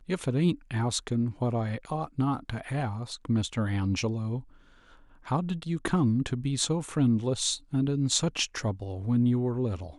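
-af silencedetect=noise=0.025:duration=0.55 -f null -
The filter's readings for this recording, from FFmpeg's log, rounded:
silence_start: 4.39
silence_end: 5.28 | silence_duration: 0.88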